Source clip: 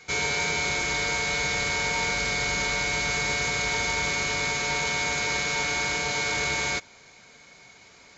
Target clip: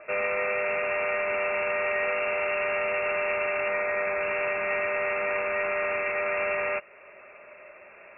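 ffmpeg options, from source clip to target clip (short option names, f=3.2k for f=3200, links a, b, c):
-filter_complex "[0:a]asettb=1/sr,asplit=3[a][b][c];[a]atrim=end=3.674[d];[b]atrim=start=3.67:end=4.22,asetpts=PTS-STARTPTS,afade=t=in:d=0.004:c=qsin,afade=t=out:st=0.546:d=0.004:c=qsin,highpass=180[e];[c]atrim=start=4.216[f];[d][e]acrossfade=d=0.004:c1=hsin:c2=qsin[g];[g][f]acrossfade=d=0.004:c1=qsin:c2=hsin,asplit=2[h][i];[i]acompressor=threshold=-42dB:ratio=6,volume=-2dB[j];[h][j]amix=inputs=2:normalize=0,lowpass=f=2.4k:t=q:w=0.5098,lowpass=f=2.4k:t=q:w=0.6013,lowpass=f=2.4k:t=q:w=0.9,lowpass=f=2.4k:t=q:w=2.563,afreqshift=-2800"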